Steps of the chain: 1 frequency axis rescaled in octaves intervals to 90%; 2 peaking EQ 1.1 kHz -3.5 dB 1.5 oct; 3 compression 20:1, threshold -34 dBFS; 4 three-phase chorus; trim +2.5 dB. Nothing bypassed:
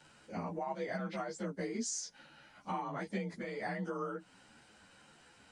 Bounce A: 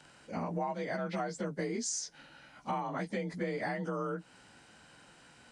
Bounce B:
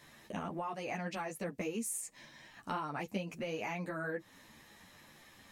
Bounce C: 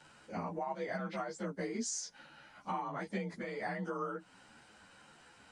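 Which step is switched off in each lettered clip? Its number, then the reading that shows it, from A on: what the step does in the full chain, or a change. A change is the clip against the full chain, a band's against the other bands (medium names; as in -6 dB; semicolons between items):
4, loudness change +3.0 LU; 1, 2 kHz band +3.0 dB; 2, momentary loudness spread change +12 LU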